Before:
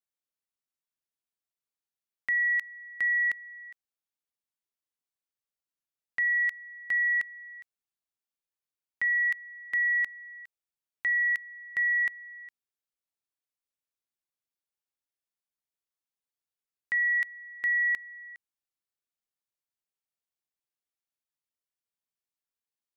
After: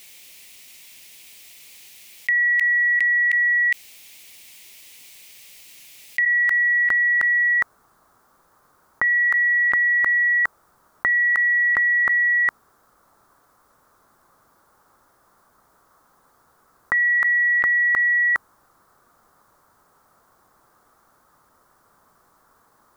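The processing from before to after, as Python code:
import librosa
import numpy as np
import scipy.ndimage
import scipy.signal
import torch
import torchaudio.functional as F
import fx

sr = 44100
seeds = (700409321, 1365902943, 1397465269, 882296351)

y = fx.high_shelf_res(x, sr, hz=1800.0, db=fx.steps((0.0, 7.0), (6.24, -7.5), (7.53, -13.0)), q=3.0)
y = fx.env_flatten(y, sr, amount_pct=100)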